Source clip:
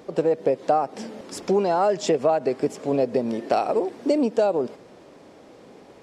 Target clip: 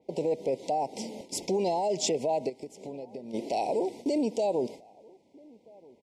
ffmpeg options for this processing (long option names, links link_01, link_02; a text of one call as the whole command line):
ffmpeg -i in.wav -filter_complex "[0:a]agate=range=-15dB:threshold=-39dB:ratio=16:detection=peak,asplit=3[link_01][link_02][link_03];[link_01]afade=type=out:start_time=2.48:duration=0.02[link_04];[link_02]acompressor=threshold=-34dB:ratio=12,afade=type=in:start_time=2.48:duration=0.02,afade=type=out:start_time=3.33:duration=0.02[link_05];[link_03]afade=type=in:start_time=3.33:duration=0.02[link_06];[link_04][link_05][link_06]amix=inputs=3:normalize=0,alimiter=limit=-17.5dB:level=0:latency=1:release=17,asuperstop=centerf=1400:order=20:qfactor=1.4,asplit=2[link_07][link_08];[link_08]adelay=1283,volume=-25dB,highshelf=frequency=4000:gain=-28.9[link_09];[link_07][link_09]amix=inputs=2:normalize=0,adynamicequalizer=threshold=0.00316:dfrequency=3800:dqfactor=0.7:tfrequency=3800:tqfactor=0.7:attack=5:release=100:ratio=0.375:range=3.5:mode=boostabove:tftype=highshelf,volume=-3dB" out.wav